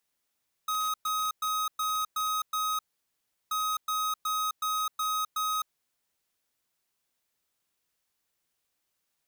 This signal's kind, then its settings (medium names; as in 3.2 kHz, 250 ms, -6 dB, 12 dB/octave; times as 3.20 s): beep pattern square 1.26 kHz, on 0.26 s, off 0.11 s, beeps 6, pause 0.72 s, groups 2, -29.5 dBFS